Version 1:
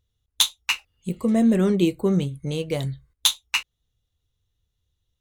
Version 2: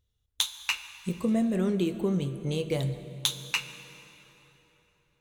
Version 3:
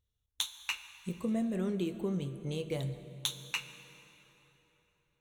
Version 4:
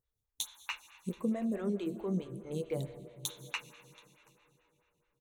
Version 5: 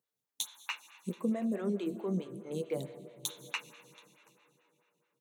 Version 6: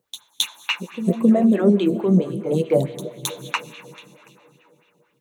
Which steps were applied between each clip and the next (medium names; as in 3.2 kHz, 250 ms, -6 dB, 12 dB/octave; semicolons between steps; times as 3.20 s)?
compression, threshold -21 dBFS, peak gain reduction 8 dB; plate-style reverb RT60 3.7 s, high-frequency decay 0.7×, DRR 10.5 dB; trim -2.5 dB
band-stop 4.9 kHz, Q 6.7; trim -6.5 dB
peaking EQ 3 kHz -4.5 dB 0.79 oct; delay 728 ms -23.5 dB; lamp-driven phase shifter 4.6 Hz; trim +2 dB
high-pass 160 Hz 24 dB/octave; trim +1 dB
bass shelf 410 Hz +10.5 dB; pre-echo 266 ms -14 dB; sweeping bell 3.6 Hz 520–3400 Hz +10 dB; trim +9 dB